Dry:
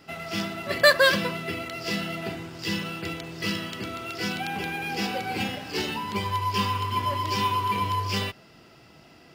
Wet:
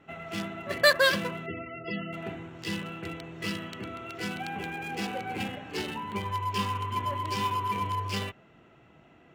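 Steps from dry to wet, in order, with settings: local Wiener filter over 9 samples; treble shelf 2.1 kHz +2 dB; 1.46–2.13 s: loudest bins only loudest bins 32; trim -4 dB

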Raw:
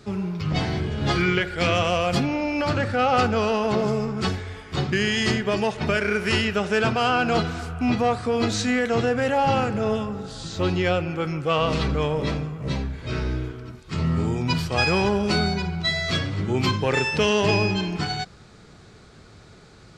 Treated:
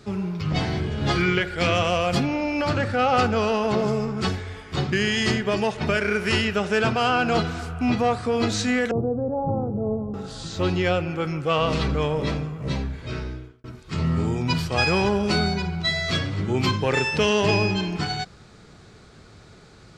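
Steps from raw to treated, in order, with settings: 8.91–10.14 s: Bessel low-pass 520 Hz, order 8; 12.93–13.64 s: fade out

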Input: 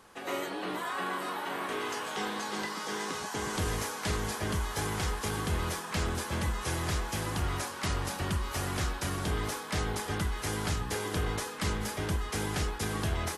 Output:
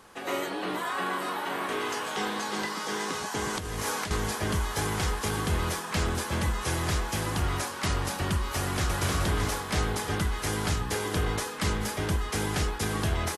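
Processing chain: 3.58–4.11 s: compressor with a negative ratio -36 dBFS, ratio -1; 8.58–9.00 s: echo throw 310 ms, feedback 60%, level -1.5 dB; trim +3.5 dB

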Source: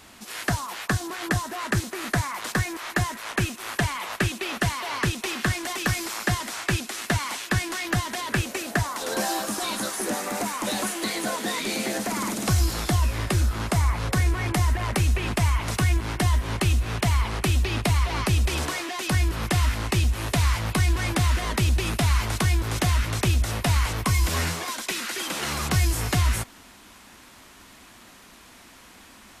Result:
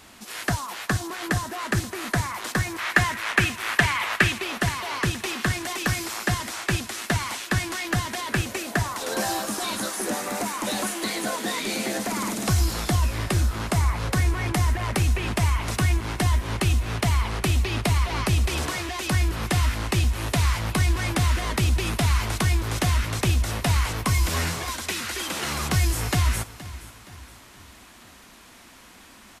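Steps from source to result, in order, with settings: 2.78–4.41 s: peaking EQ 2 kHz +9 dB 1.8 oct; feedback delay 471 ms, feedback 44%, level -17 dB

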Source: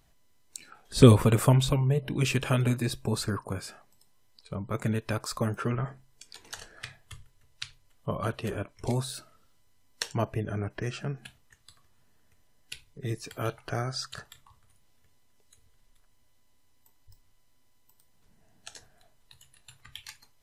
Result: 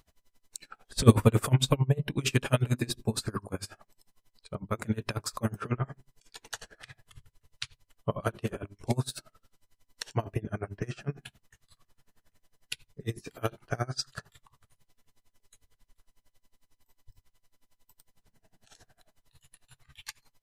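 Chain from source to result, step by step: hum notches 50/100/150/200/250/300/350/400 Hz; in parallel at -7.5 dB: saturation -14.5 dBFS, distortion -12 dB; on the sum: logarithmic tremolo 11 Hz, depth 27 dB; trim +2 dB

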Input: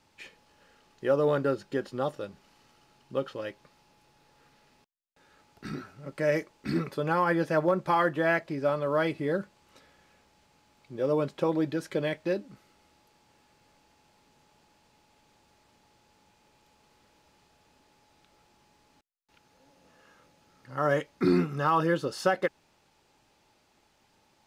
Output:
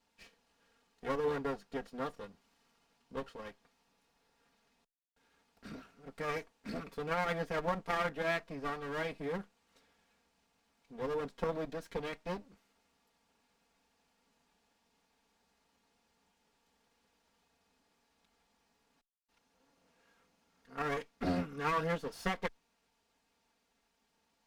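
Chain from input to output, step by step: comb filter that takes the minimum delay 4.3 ms; Chebyshev shaper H 3 -18 dB, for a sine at -14 dBFS; trim -5 dB

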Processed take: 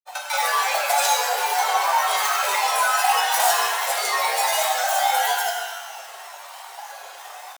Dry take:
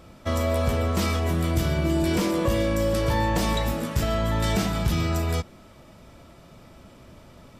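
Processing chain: flange 1.5 Hz, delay 9.8 ms, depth 1.1 ms, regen +3%; frequency shift +260 Hz; reverb removal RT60 0.53 s; in parallel at +2 dB: compression 10:1, threshold -39 dBFS, peak gain reduction 17.5 dB; on the sum: reverb removal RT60 0.61 s; saturation -22 dBFS, distortion -16 dB; pitch shift +9.5 st; tilt EQ +4.5 dB/octave; granulator, pitch spread up and down by 7 st; resonant high-pass 760 Hz, resonance Q 4.6; pitch-shifted reverb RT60 1.2 s, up +12 st, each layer -8 dB, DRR 0 dB

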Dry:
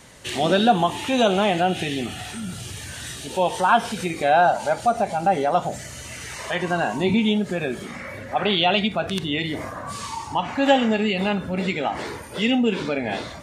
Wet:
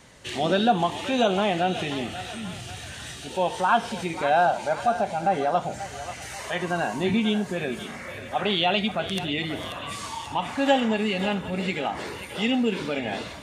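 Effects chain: peaking EQ 12 kHz -7 dB 0.93 oct, from 6.22 s +2.5 dB; thinning echo 537 ms, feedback 65%, high-pass 800 Hz, level -10 dB; trim -3.5 dB

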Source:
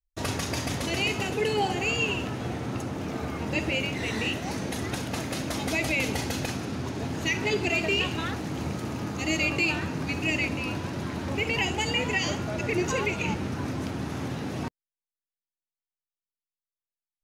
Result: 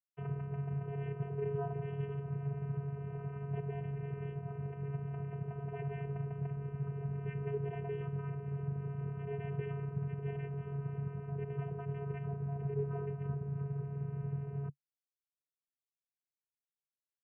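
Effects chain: treble shelf 2.2 kHz +4.5 dB, from 11.01 s -3.5 dB, from 12.27 s -10.5 dB; low-pass that closes with the level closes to 1.2 kHz, closed at -26.5 dBFS; vocoder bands 8, square 140 Hz; steep low-pass 3 kHz 96 dB/octave; trim -6.5 dB

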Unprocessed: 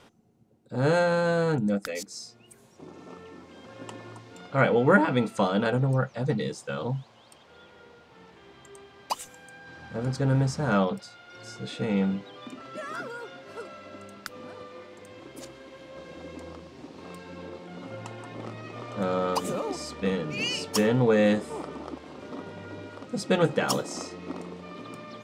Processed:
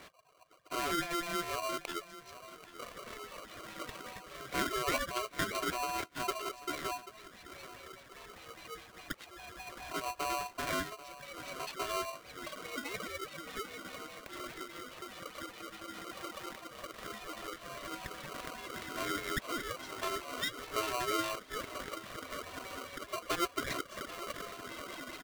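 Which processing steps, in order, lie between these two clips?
LFO low-pass sine 4.9 Hz 460–3200 Hz; compression 2:1, threshold -42 dBFS, peak gain reduction 16 dB; reverb removal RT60 0.8 s; on a send: feedback delay 787 ms, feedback 21%, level -15.5 dB; on the sum: polarity switched at an audio rate 860 Hz

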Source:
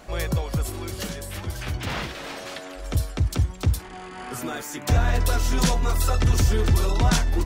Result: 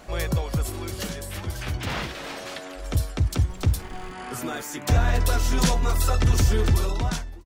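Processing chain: fade out at the end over 0.79 s; 3.48–4.12 s: added noise brown -37 dBFS

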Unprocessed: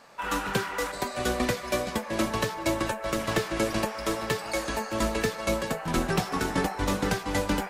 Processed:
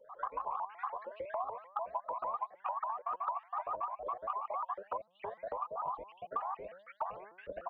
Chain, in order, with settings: random holes in the spectrogram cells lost 61%; de-hum 194.8 Hz, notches 10; peak limiter -22.5 dBFS, peak gain reduction 10 dB; cascade formant filter a; peaking EQ 980 Hz +3.5 dB 1.7 oct; comb 1.9 ms, depth 50%; compression 6:1, threshold -50 dBFS, peak gain reduction 15.5 dB; tilt shelf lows -6 dB, about 730 Hz; vibrato with a chosen wave saw up 6.7 Hz, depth 250 cents; trim +13.5 dB

